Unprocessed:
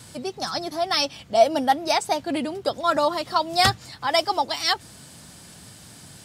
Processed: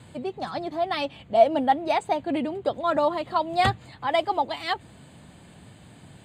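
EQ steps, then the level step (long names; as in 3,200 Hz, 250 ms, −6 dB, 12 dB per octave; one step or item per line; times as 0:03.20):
moving average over 8 samples
parametric band 1,400 Hz −5 dB 0.66 octaves
0.0 dB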